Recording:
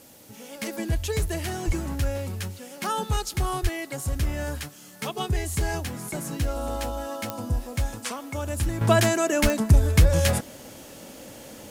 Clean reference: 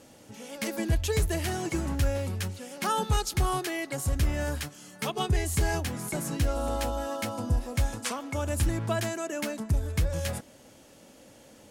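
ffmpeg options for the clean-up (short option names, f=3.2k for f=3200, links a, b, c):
-filter_complex "[0:a]adeclick=t=4,asplit=3[a][b][c];[a]afade=t=out:st=1.66:d=0.02[d];[b]highpass=f=140:w=0.5412,highpass=f=140:w=1.3066,afade=t=in:st=1.66:d=0.02,afade=t=out:st=1.78:d=0.02[e];[c]afade=t=in:st=1.78:d=0.02[f];[d][e][f]amix=inputs=3:normalize=0,asplit=3[g][h][i];[g]afade=t=out:st=3.62:d=0.02[j];[h]highpass=f=140:w=0.5412,highpass=f=140:w=1.3066,afade=t=in:st=3.62:d=0.02,afade=t=out:st=3.74:d=0.02[k];[i]afade=t=in:st=3.74:d=0.02[l];[j][k][l]amix=inputs=3:normalize=0,asplit=3[m][n][o];[m]afade=t=out:st=9.42:d=0.02[p];[n]highpass=f=140:w=0.5412,highpass=f=140:w=1.3066,afade=t=in:st=9.42:d=0.02,afade=t=out:st=9.54:d=0.02[q];[o]afade=t=in:st=9.54:d=0.02[r];[p][q][r]amix=inputs=3:normalize=0,agate=range=-21dB:threshold=-36dB,asetnsamples=n=441:p=0,asendcmd='8.81 volume volume -10dB',volume=0dB"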